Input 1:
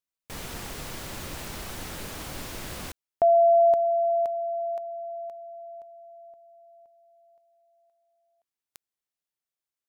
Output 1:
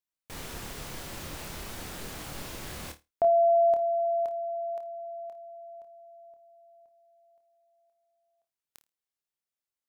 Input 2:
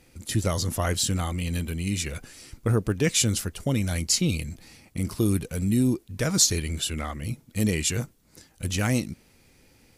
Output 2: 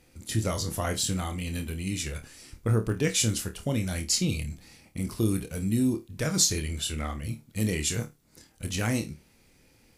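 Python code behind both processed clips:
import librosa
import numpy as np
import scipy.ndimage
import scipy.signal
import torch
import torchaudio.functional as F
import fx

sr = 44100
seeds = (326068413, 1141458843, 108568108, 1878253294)

y = fx.room_flutter(x, sr, wall_m=4.6, rt60_s=0.21)
y = y * librosa.db_to_amplitude(-3.5)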